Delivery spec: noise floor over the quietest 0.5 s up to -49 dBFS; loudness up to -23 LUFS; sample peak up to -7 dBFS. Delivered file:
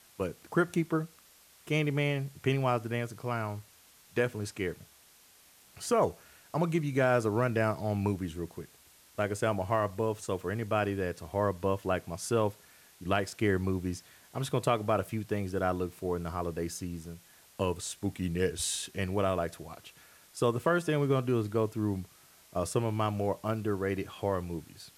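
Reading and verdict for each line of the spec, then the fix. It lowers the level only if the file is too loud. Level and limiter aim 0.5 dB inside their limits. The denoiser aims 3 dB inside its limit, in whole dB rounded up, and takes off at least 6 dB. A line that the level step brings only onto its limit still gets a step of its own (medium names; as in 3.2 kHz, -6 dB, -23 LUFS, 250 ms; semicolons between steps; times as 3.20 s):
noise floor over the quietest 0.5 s -60 dBFS: pass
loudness -32.0 LUFS: pass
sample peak -14.0 dBFS: pass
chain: none needed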